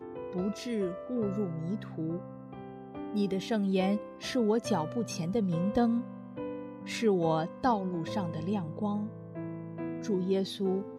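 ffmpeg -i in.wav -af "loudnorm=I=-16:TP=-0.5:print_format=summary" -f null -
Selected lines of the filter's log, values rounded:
Input Integrated:    -32.5 LUFS
Input True Peak:     -15.3 dBTP
Input LRA:             3.7 LU
Input Threshold:     -42.7 LUFS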